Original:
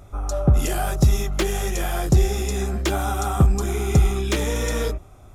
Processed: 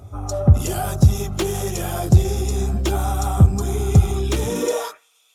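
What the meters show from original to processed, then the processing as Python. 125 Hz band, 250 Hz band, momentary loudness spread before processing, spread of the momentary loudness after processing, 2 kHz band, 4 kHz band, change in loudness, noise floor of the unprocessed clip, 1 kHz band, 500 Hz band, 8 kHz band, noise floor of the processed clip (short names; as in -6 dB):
+4.5 dB, +2.0 dB, 6 LU, 8 LU, -4.5 dB, -0.5 dB, +2.5 dB, -45 dBFS, +0.5 dB, +1.5 dB, +1.0 dB, -59 dBFS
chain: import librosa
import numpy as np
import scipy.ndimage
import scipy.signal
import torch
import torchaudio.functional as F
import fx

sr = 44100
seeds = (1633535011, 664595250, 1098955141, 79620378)

p1 = fx.spec_quant(x, sr, step_db=15)
p2 = fx.peak_eq(p1, sr, hz=1900.0, db=-8.0, octaves=0.91)
p3 = 10.0 ** (-21.5 / 20.0) * np.tanh(p2 / 10.0 ** (-21.5 / 20.0))
p4 = p2 + (p3 * 10.0 ** (-4.0 / 20.0))
p5 = fx.echo_bbd(p4, sr, ms=92, stages=1024, feedback_pct=75, wet_db=-21.0)
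p6 = fx.filter_sweep_highpass(p5, sr, from_hz=90.0, to_hz=3000.0, start_s=4.41, end_s=5.07, q=2.9)
y = p6 * 10.0 ** (-1.5 / 20.0)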